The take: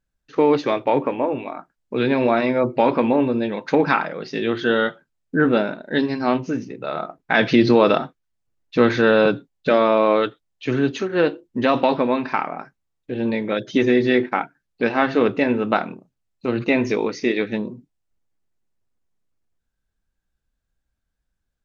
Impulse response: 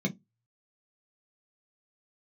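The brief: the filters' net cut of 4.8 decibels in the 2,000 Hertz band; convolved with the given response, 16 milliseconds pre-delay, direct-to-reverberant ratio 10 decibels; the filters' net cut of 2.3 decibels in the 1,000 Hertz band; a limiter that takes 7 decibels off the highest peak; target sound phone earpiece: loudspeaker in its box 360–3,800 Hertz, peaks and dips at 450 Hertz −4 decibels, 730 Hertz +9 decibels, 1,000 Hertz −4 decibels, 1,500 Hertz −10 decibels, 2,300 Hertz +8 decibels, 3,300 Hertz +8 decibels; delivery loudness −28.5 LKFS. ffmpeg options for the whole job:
-filter_complex "[0:a]equalizer=frequency=1000:width_type=o:gain=-5.5,equalizer=frequency=2000:width_type=o:gain=-6,alimiter=limit=-11.5dB:level=0:latency=1,asplit=2[link_01][link_02];[1:a]atrim=start_sample=2205,adelay=16[link_03];[link_02][link_03]afir=irnorm=-1:irlink=0,volume=-15.5dB[link_04];[link_01][link_04]amix=inputs=2:normalize=0,highpass=360,equalizer=frequency=450:width_type=q:width=4:gain=-4,equalizer=frequency=730:width_type=q:width=4:gain=9,equalizer=frequency=1000:width_type=q:width=4:gain=-4,equalizer=frequency=1500:width_type=q:width=4:gain=-10,equalizer=frequency=2300:width_type=q:width=4:gain=8,equalizer=frequency=3300:width_type=q:width=4:gain=8,lowpass=frequency=3800:width=0.5412,lowpass=frequency=3800:width=1.3066,volume=-4dB"

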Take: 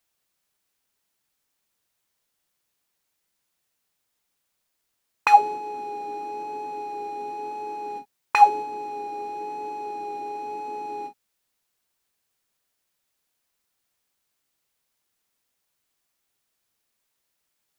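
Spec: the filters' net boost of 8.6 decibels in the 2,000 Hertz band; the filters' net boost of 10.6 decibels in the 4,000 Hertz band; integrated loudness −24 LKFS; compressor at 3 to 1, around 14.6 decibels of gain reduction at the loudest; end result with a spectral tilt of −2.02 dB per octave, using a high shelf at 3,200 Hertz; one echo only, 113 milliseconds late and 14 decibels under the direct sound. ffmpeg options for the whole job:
ffmpeg -i in.wav -af "equalizer=frequency=2000:width_type=o:gain=6,highshelf=frequency=3200:gain=6.5,equalizer=frequency=4000:width_type=o:gain=6,acompressor=threshold=-27dB:ratio=3,aecho=1:1:113:0.2,volume=7.5dB" out.wav

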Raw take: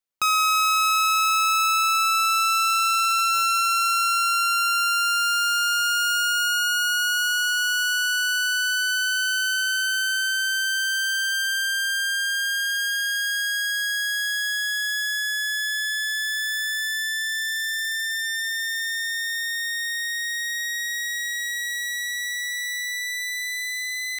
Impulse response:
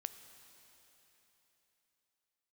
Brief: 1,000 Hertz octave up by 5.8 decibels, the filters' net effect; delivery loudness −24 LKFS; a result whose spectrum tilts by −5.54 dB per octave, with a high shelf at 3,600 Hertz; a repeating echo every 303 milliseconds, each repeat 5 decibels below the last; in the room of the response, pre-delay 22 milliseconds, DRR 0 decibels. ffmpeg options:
-filter_complex "[0:a]equalizer=frequency=1000:width_type=o:gain=8.5,highshelf=frequency=3600:gain=7,aecho=1:1:303|606|909|1212|1515|1818|2121:0.562|0.315|0.176|0.0988|0.0553|0.031|0.0173,asplit=2[link_01][link_02];[1:a]atrim=start_sample=2205,adelay=22[link_03];[link_02][link_03]afir=irnorm=-1:irlink=0,volume=3dB[link_04];[link_01][link_04]amix=inputs=2:normalize=0,volume=-11.5dB"

